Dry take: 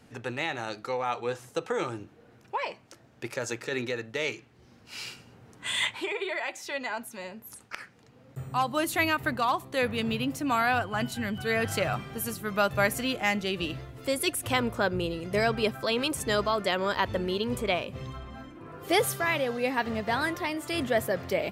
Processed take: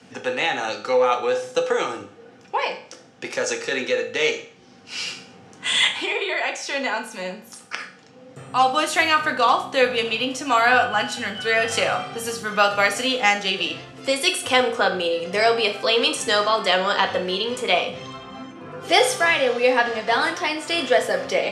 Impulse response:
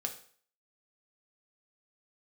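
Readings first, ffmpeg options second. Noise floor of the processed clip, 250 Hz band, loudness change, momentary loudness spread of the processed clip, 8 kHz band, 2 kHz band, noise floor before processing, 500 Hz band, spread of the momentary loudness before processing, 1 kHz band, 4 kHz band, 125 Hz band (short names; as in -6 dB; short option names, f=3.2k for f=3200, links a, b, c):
-48 dBFS, +1.0 dB, +8.5 dB, 14 LU, +7.0 dB, +9.0 dB, -57 dBFS, +8.0 dB, 15 LU, +9.0 dB, +11.0 dB, -4.5 dB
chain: -filter_complex "[0:a]acrossover=split=400|880|3200[a][b][c][d];[a]acompressor=threshold=-42dB:ratio=10[e];[e][b][c][d]amix=inputs=4:normalize=0,highpass=f=110:w=0.5412,highpass=f=110:w=1.3066,equalizer=f=130:t=q:w=4:g=-8,equalizer=f=3k:t=q:w=4:g=4,equalizer=f=5.6k:t=q:w=4:g=5,lowpass=f=9k:w=0.5412,lowpass=f=9k:w=1.3066[f];[1:a]atrim=start_sample=2205[g];[f][g]afir=irnorm=-1:irlink=0,volume=8dB"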